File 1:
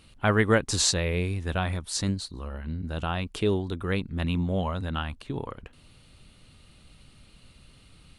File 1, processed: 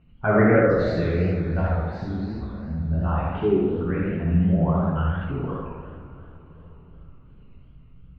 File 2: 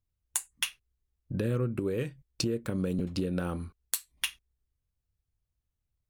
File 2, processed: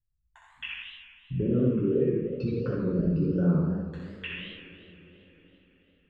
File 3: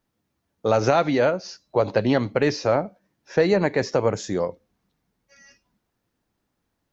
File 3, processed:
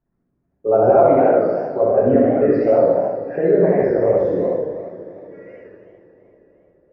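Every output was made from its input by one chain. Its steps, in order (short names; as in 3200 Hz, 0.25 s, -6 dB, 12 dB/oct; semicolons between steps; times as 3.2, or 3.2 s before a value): formant sharpening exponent 2; LPF 2200 Hz 24 dB/oct; flutter echo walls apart 10.6 m, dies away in 0.83 s; two-slope reverb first 0.5 s, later 4.8 s, from -20 dB, DRR -5 dB; warbling echo 80 ms, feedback 59%, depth 182 cents, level -5 dB; gain -3 dB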